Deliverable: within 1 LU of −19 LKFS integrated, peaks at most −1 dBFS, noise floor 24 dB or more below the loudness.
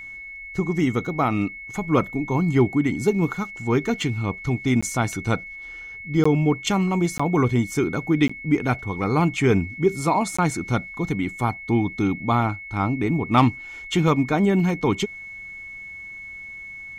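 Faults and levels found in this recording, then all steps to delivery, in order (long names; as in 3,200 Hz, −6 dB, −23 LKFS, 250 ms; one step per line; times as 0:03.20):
number of dropouts 5; longest dropout 15 ms; interfering tone 2,200 Hz; level of the tone −35 dBFS; integrated loudness −22.5 LKFS; sample peak −6.0 dBFS; target loudness −19.0 LKFS
→ repair the gap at 0:04.81/0:06.24/0:07.18/0:08.28/0:10.37, 15 ms
notch filter 2,200 Hz, Q 30
level +3.5 dB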